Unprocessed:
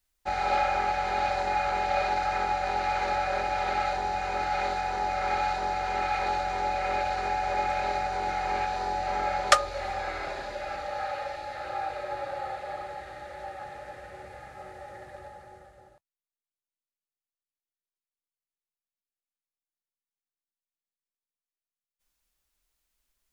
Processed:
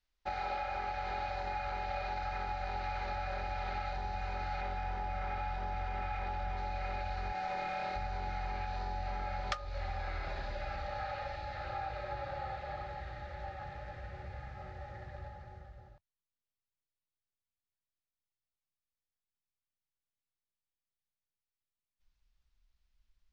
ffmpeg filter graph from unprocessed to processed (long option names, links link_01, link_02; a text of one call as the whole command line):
ffmpeg -i in.wav -filter_complex "[0:a]asettb=1/sr,asplit=3[link_01][link_02][link_03];[link_01]atrim=end=4.614[link_04];[link_02]atrim=start=4.61:end=6.57,asetpts=PTS-STARTPTS,afade=type=in:duration=0.004:curve=qsin,afade=type=out:start_time=1.956:duration=0.004:curve=qsin,aeval=exprs='val(0)+0.5*0.0126*sgn(val(0))':channel_layout=same,highshelf=frequency=5800:gain=-12,bandreject=frequency=4200:width=11[link_05];[link_03]atrim=start=6.566[link_06];[link_04][link_05]acrossfade=duration=0.004:curve1=hsin:curve2=qsin[link_07];[link_07][link_06]acrossfade=duration=0.004:curve1=qsin:curve2=hsin,asettb=1/sr,asplit=3[link_08][link_09][link_10];[link_08]atrim=end=7.324[link_11];[link_09]atrim=start=7.32:end=7.96,asetpts=PTS-STARTPTS,afade=type=in:duration=0.004:curve=qsin,afade=type=out:start_time=0.636:duration=0.004:curve=qsin,highpass=190,aeval=exprs='sgn(val(0))*max(abs(val(0))-0.00473,0)':channel_layout=same,asplit=2[link_12][link_13];[link_13]adelay=28,volume=-2.5dB[link_14];[link_12][link_14]amix=inputs=2:normalize=0,atrim=end_sample=28224[link_15];[link_10]atrim=start=7.956[link_16];[link_11][link_15]acrossfade=duration=0.004:curve1=hsin:curve2=qsin[link_17];[link_17][link_16]acrossfade=duration=0.004:curve1=qsin:curve2=hsin,lowpass=frequency=5400:width=0.5412,lowpass=frequency=5400:width=1.3066,asubboost=boost=5.5:cutoff=150,acompressor=threshold=-30dB:ratio=6,volume=-4dB" out.wav